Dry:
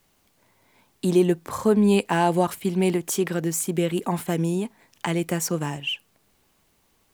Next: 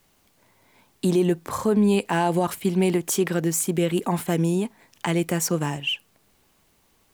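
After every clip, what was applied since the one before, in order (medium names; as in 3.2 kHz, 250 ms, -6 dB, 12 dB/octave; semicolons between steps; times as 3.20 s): peak limiter -14 dBFS, peak gain reduction 5.5 dB; trim +2 dB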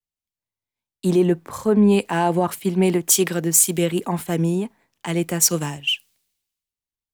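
three bands expanded up and down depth 100%; trim +1.5 dB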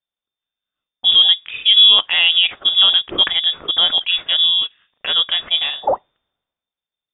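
frequency inversion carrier 3.6 kHz; trim +5 dB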